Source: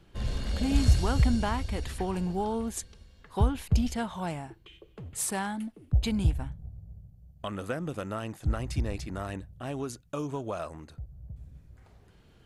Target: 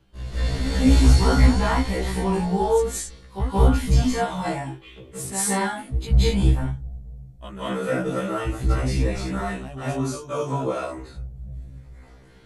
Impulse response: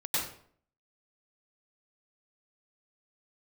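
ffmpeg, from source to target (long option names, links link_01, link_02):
-filter_complex "[1:a]atrim=start_sample=2205,atrim=end_sample=6615,asetrate=23814,aresample=44100[link_01];[0:a][link_01]afir=irnorm=-1:irlink=0,afftfilt=real='re*1.73*eq(mod(b,3),0)':imag='im*1.73*eq(mod(b,3),0)':win_size=2048:overlap=0.75"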